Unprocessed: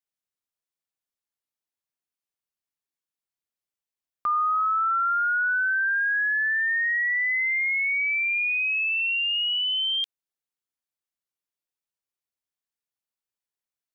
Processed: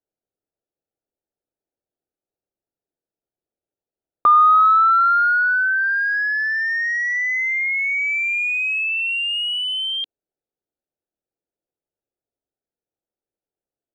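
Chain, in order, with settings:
adaptive Wiener filter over 41 samples
flat-topped bell 630 Hz +8.5 dB 2.3 octaves, from 0:07.13 +15.5 dB, from 0:08.18 +8 dB
level +8 dB

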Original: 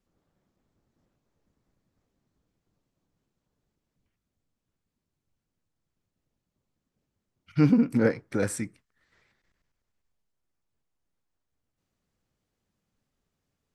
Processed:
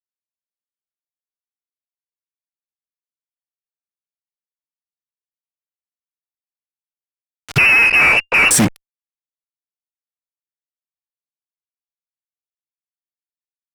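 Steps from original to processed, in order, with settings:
fuzz pedal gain 48 dB, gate −48 dBFS
0:07.58–0:08.51: voice inversion scrambler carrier 2,800 Hz
harmonic generator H 8 −30 dB, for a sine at −5.5 dBFS
level +3 dB

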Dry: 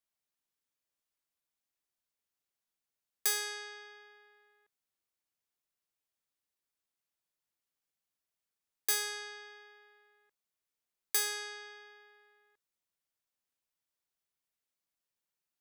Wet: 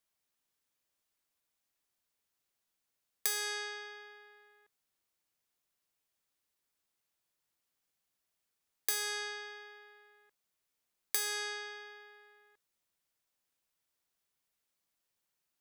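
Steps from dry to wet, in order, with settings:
downward compressor 4 to 1, threshold −36 dBFS, peak gain reduction 9 dB
level +5 dB

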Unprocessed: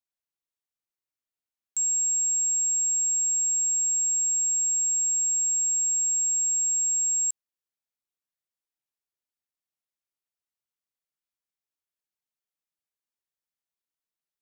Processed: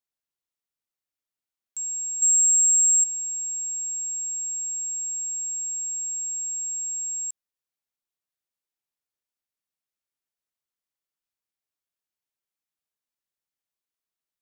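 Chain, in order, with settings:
brickwall limiter −27 dBFS, peak gain reduction 5 dB
0:02.22–0:03.04: spectral tilt +4 dB per octave

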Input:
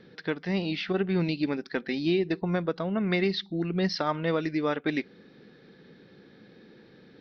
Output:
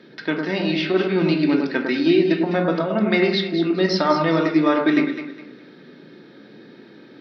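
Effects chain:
high-pass filter 190 Hz 12 dB per octave
delay that swaps between a low-pass and a high-pass 103 ms, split 1,500 Hz, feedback 55%, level −4 dB
on a send at −2.5 dB: convolution reverb RT60 0.40 s, pre-delay 3 ms
on the sum: level +6 dB

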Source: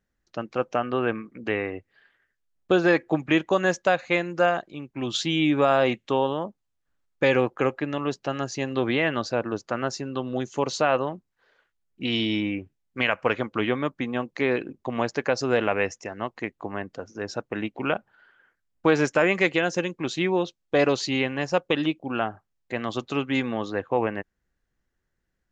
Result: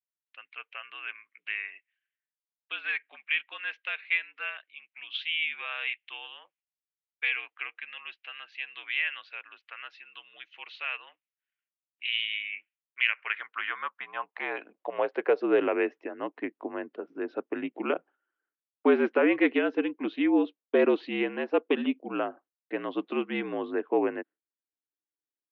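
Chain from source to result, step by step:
noise gate with hold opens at −46 dBFS
single-sideband voice off tune −54 Hz 260–3,300 Hz
high-pass filter sweep 2,400 Hz → 310 Hz, 0:13.01–0:15.67
level −5.5 dB

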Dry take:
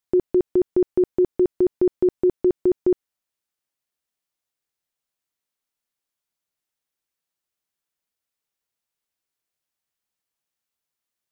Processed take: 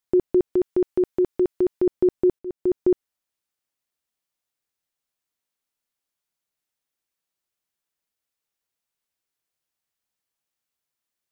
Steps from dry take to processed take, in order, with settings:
0:00.53–0:01.87: tilt shelving filter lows −3.5 dB, about 720 Hz
0:02.39–0:02.80: fade in

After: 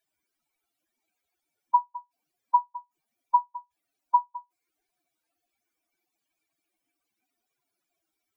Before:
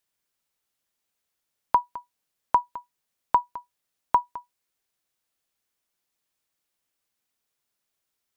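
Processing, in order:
expanding power law on the bin magnitudes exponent 3.2
parametric band 1,500 Hz +3 dB 0.38 octaves
hollow resonant body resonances 320/700/2,300 Hz, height 15 dB, ringing for 40 ms
level −2.5 dB

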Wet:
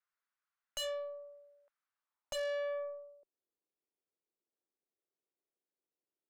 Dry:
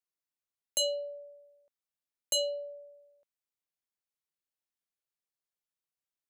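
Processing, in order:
band-pass filter sweep 1,400 Hz → 380 Hz, 0:01.86–0:03.25
tube saturation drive 49 dB, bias 0.5
level +14 dB

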